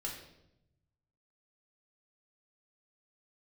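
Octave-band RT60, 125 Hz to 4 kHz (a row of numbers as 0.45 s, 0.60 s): 1.7 s, 1.1 s, 0.95 s, 0.75 s, 0.65 s, 0.65 s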